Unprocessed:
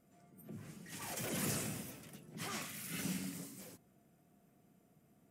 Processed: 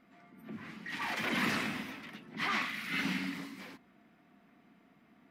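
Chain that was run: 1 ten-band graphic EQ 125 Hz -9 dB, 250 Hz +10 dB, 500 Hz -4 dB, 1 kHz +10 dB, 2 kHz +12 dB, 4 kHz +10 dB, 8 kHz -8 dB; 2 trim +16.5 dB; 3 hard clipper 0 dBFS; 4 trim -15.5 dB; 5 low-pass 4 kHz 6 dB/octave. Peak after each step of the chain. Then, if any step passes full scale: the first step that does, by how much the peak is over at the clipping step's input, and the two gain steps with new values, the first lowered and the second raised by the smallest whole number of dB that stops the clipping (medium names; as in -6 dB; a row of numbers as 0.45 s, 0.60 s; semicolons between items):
-20.5 dBFS, -4.0 dBFS, -4.0 dBFS, -19.5 dBFS, -20.5 dBFS; nothing clips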